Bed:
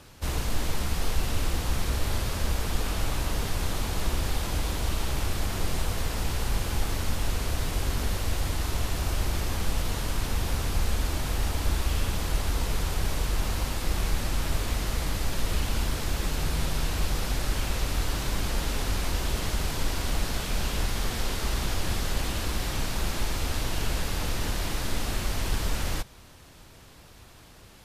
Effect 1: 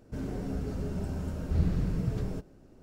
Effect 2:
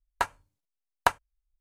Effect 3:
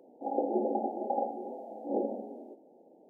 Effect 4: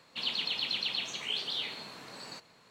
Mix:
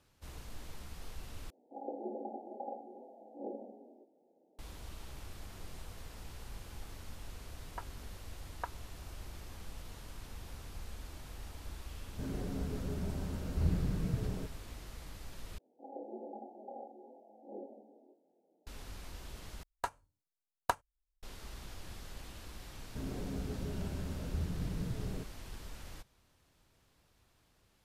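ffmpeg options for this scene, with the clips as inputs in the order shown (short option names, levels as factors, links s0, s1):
-filter_complex "[3:a]asplit=2[s0][s1];[2:a]asplit=2[s2][s3];[1:a]asplit=2[s4][s5];[0:a]volume=0.106[s6];[s2]lowpass=1600[s7];[s1]flanger=delay=22.5:depth=5:speed=1.1[s8];[s3]equalizer=f=2200:t=o:w=1.4:g=-7[s9];[s5]alimiter=limit=0.0794:level=0:latency=1:release=257[s10];[s6]asplit=4[s11][s12][s13][s14];[s11]atrim=end=1.504[s15];[s0]atrim=end=3.09,asetpts=PTS-STARTPTS,volume=0.266[s16];[s12]atrim=start=4.586:end=15.584[s17];[s8]atrim=end=3.09,asetpts=PTS-STARTPTS,volume=0.237[s18];[s13]atrim=start=18.666:end=19.634[s19];[s9]atrim=end=1.6,asetpts=PTS-STARTPTS,volume=0.447[s20];[s14]atrim=start=21.226[s21];[s7]atrim=end=1.6,asetpts=PTS-STARTPTS,volume=0.141,afade=t=in:d=0.004:c=hsin,afade=t=out:st=1.596:d=0.004:c=hsin,adelay=7570[s22];[s4]atrim=end=2.82,asetpts=PTS-STARTPTS,volume=0.596,afade=t=in:d=0.004:c=hsin,afade=t=out:st=2.816:d=0.004:c=hsin,adelay=12060[s23];[s10]atrim=end=2.82,asetpts=PTS-STARTPTS,volume=0.531,afade=t=in:d=0.004:c=hsin,afade=t=out:st=2.816:d=0.004:c=hsin,adelay=22830[s24];[s15][s16]acrossfade=d=0.004:c1=hsin:c2=hsin[s25];[s25][s17]acrossfade=d=0.004:c1=hsin:c2=hsin[s26];[s26][s18]acrossfade=d=0.004:c1=hsin:c2=hsin[s27];[s27][s19]acrossfade=d=0.004:c1=hsin:c2=hsin[s28];[s28][s20]acrossfade=d=0.004:c1=hsin:c2=hsin[s29];[s29][s21]acrossfade=d=0.004:c1=hsin:c2=hsin[s30];[s30][s22][s23][s24]amix=inputs=4:normalize=0"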